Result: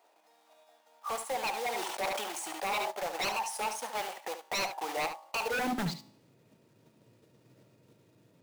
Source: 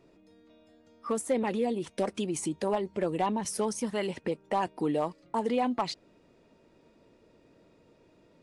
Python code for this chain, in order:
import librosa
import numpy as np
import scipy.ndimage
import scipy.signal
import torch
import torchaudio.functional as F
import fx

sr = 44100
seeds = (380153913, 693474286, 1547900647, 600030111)

p1 = fx.block_float(x, sr, bits=3)
p2 = fx.level_steps(p1, sr, step_db=10)
p3 = p1 + F.gain(torch.from_numpy(p2), 2.0).numpy()
p4 = fx.filter_sweep_highpass(p3, sr, from_hz=790.0, to_hz=120.0, start_s=5.41, end_s=5.97, q=5.6)
p5 = fx.comb_fb(p4, sr, f0_hz=53.0, decay_s=0.65, harmonics='all', damping=0.0, mix_pct=40)
p6 = 10.0 ** (-20.5 / 20.0) * (np.abs((p5 / 10.0 ** (-20.5 / 20.0) + 3.0) % 4.0 - 2.0) - 1.0)
p7 = p6 + fx.echo_single(p6, sr, ms=72, db=-10.0, dry=0)
p8 = fx.sustainer(p7, sr, db_per_s=29.0, at=(1.72, 2.9), fade=0.02)
y = F.gain(torch.from_numpy(p8), -6.0).numpy()